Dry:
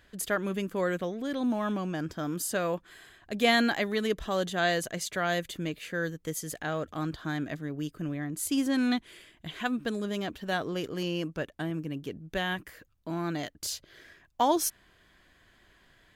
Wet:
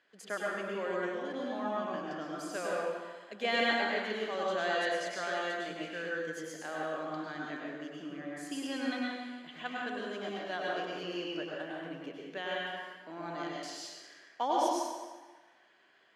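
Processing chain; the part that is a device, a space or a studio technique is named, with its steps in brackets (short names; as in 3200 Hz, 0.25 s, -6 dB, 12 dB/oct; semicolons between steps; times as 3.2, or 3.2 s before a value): supermarket ceiling speaker (BPF 350–5200 Hz; reverb RT60 1.4 s, pre-delay 94 ms, DRR -4.5 dB); HPF 110 Hz; notch 3700 Hz, Q 12; gain -8 dB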